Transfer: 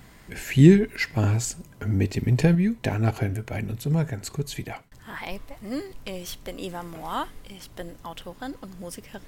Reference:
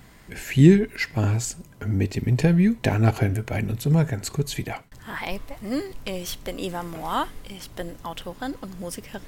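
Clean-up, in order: gain correction +4 dB, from 2.55

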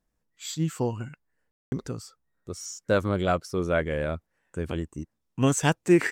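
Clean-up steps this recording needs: room tone fill 1.51–1.72

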